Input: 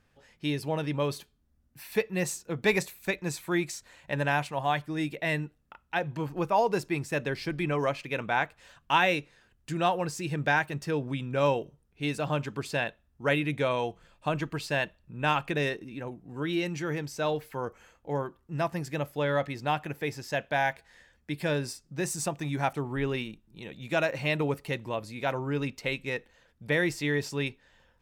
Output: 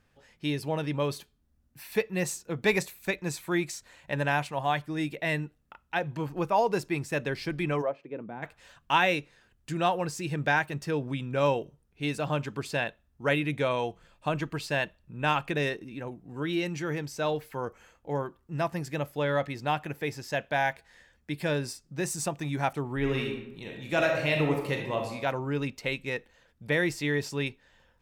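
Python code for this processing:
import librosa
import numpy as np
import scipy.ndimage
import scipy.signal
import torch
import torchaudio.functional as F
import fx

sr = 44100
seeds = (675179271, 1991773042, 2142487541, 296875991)

y = fx.bandpass_q(x, sr, hz=fx.line((7.81, 660.0), (8.42, 190.0)), q=1.5, at=(7.81, 8.42), fade=0.02)
y = fx.reverb_throw(y, sr, start_s=22.98, length_s=2.14, rt60_s=0.88, drr_db=1.0)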